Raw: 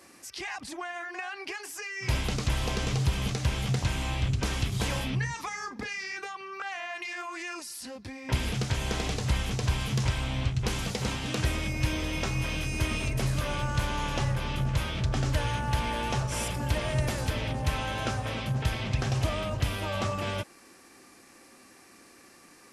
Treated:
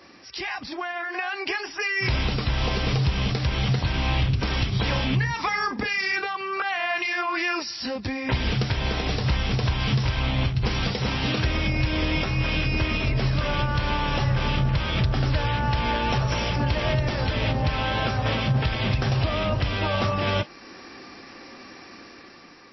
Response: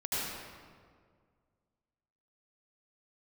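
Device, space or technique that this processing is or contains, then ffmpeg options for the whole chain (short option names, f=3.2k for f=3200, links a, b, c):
low-bitrate web radio: -af "dynaudnorm=f=910:g=3:m=7dB,alimiter=limit=-19dB:level=0:latency=1:release=375,volume=5.5dB" -ar 16000 -c:a libmp3lame -b:a 24k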